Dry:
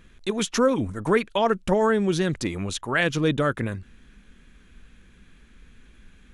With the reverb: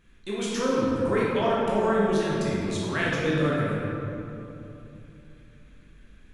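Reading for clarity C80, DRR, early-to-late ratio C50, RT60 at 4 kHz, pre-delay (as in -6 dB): -0.5 dB, -6.5 dB, -2.5 dB, 1.6 s, 13 ms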